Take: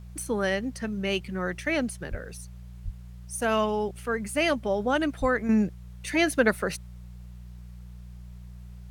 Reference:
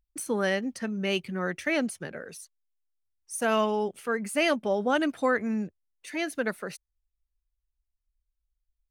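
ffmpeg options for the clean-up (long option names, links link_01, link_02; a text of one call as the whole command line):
ffmpeg -i in.wav -filter_complex "[0:a]bandreject=frequency=60.1:width_type=h:width=4,bandreject=frequency=120.2:width_type=h:width=4,bandreject=frequency=180.3:width_type=h:width=4,asplit=3[link_01][link_02][link_03];[link_01]afade=type=out:start_time=2.1:duration=0.02[link_04];[link_02]highpass=frequency=140:width=0.5412,highpass=frequency=140:width=1.3066,afade=type=in:start_time=2.1:duration=0.02,afade=type=out:start_time=2.22:duration=0.02[link_05];[link_03]afade=type=in:start_time=2.22:duration=0.02[link_06];[link_04][link_05][link_06]amix=inputs=3:normalize=0,asplit=3[link_07][link_08][link_09];[link_07]afade=type=out:start_time=2.84:duration=0.02[link_10];[link_08]highpass=frequency=140:width=0.5412,highpass=frequency=140:width=1.3066,afade=type=in:start_time=2.84:duration=0.02,afade=type=out:start_time=2.96:duration=0.02[link_11];[link_09]afade=type=in:start_time=2.96:duration=0.02[link_12];[link_10][link_11][link_12]amix=inputs=3:normalize=0,asplit=3[link_13][link_14][link_15];[link_13]afade=type=out:start_time=5.2:duration=0.02[link_16];[link_14]highpass=frequency=140:width=0.5412,highpass=frequency=140:width=1.3066,afade=type=in:start_time=5.2:duration=0.02,afade=type=out:start_time=5.32:duration=0.02[link_17];[link_15]afade=type=in:start_time=5.32:duration=0.02[link_18];[link_16][link_17][link_18]amix=inputs=3:normalize=0,agate=range=-21dB:threshold=-36dB,asetnsamples=nb_out_samples=441:pad=0,asendcmd='5.49 volume volume -7.5dB',volume=0dB" out.wav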